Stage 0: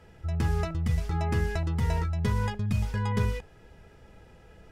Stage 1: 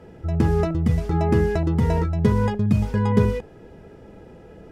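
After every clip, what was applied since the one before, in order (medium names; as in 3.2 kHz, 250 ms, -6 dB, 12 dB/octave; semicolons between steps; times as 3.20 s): peaking EQ 310 Hz +14.5 dB 2.9 oct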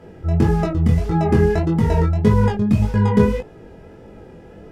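chorus 1.7 Hz, delay 18 ms, depth 6.3 ms; trim +6 dB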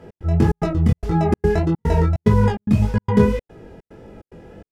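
trance gate "x.xxx.xx" 146 bpm -60 dB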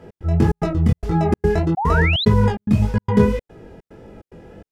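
painted sound rise, 1.77–2.25 s, 720–4200 Hz -22 dBFS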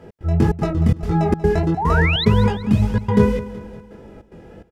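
feedback delay 188 ms, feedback 52%, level -15 dB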